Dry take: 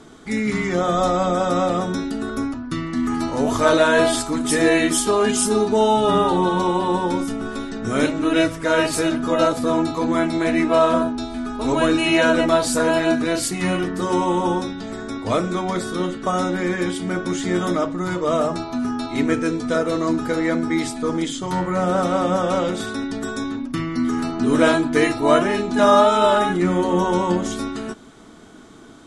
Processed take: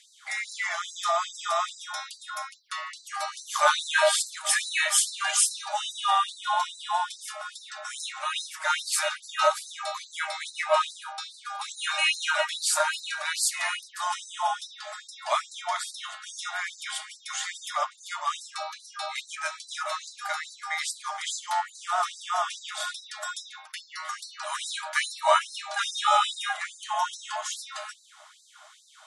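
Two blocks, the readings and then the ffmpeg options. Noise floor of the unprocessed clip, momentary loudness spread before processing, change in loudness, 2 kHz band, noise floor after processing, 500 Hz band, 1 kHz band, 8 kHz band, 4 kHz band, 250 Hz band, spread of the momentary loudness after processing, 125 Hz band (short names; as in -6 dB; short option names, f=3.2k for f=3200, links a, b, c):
-33 dBFS, 10 LU, -8.0 dB, -4.0 dB, -54 dBFS, -15.0 dB, -5.5 dB, 0.0 dB, -1.0 dB, under -40 dB, 14 LU, under -40 dB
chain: -af "afreqshift=-42,afftfilt=real='re*gte(b*sr/1024,560*pow(3900/560,0.5+0.5*sin(2*PI*2.4*pts/sr)))':imag='im*gte(b*sr/1024,560*pow(3900/560,0.5+0.5*sin(2*PI*2.4*pts/sr)))':win_size=1024:overlap=0.75"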